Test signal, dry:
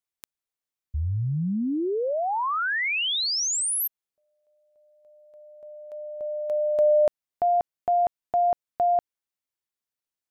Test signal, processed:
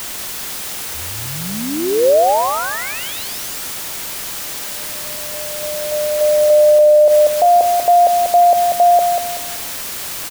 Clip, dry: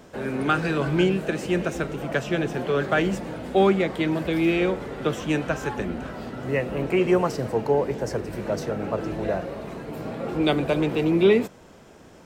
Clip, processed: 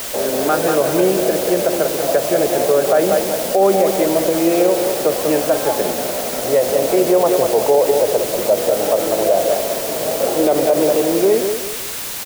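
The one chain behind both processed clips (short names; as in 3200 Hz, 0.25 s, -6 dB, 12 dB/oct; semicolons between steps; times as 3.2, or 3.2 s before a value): ending faded out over 1.63 s; band-pass 600 Hz, Q 2.9; added noise white -44 dBFS; feedback echo 0.19 s, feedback 34%, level -8 dB; maximiser +21 dB; gain -4 dB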